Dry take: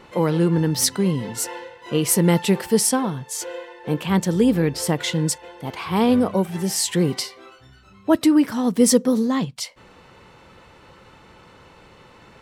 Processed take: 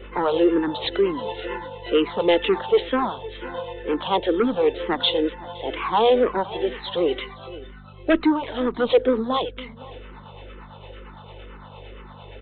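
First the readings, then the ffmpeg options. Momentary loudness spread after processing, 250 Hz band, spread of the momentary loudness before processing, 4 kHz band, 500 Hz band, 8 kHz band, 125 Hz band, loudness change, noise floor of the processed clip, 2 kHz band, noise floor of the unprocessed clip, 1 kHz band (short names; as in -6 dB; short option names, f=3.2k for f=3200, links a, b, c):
23 LU, -5.5 dB, 12 LU, +0.5 dB, +3.0 dB, under -40 dB, -16.0 dB, -2.5 dB, -43 dBFS, +1.0 dB, -50 dBFS, +4.0 dB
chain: -filter_complex "[0:a]acrossover=split=490[a][b];[a]aeval=exprs='val(0)*(1-0.5/2+0.5/2*cos(2*PI*8.8*n/s))':c=same[c];[b]aeval=exprs='val(0)*(1-0.5/2-0.5/2*cos(2*PI*8.8*n/s))':c=same[d];[c][d]amix=inputs=2:normalize=0,highpass=f=360:w=0.5412,highpass=f=360:w=1.3066,equalizer=f=2.1k:t=o:w=1.9:g=-9.5,acontrast=59,aeval=exprs='val(0)+0.00562*(sin(2*PI*50*n/s)+sin(2*PI*2*50*n/s)/2+sin(2*PI*3*50*n/s)/3+sin(2*PI*4*50*n/s)/4+sin(2*PI*5*50*n/s)/5)':c=same,aresample=16000,asoftclip=type=tanh:threshold=-16dB,aresample=44100,aemphasis=mode=production:type=75fm,asplit=2[e][f];[f]adelay=514,lowpass=f=2k:p=1,volume=-19dB,asplit=2[g][h];[h]adelay=514,lowpass=f=2k:p=1,volume=0.26[i];[g][i]amix=inputs=2:normalize=0[j];[e][j]amix=inputs=2:normalize=0,aresample=8000,aresample=44100,asplit=2[k][l];[l]afreqshift=-2.1[m];[k][m]amix=inputs=2:normalize=1,volume=7.5dB"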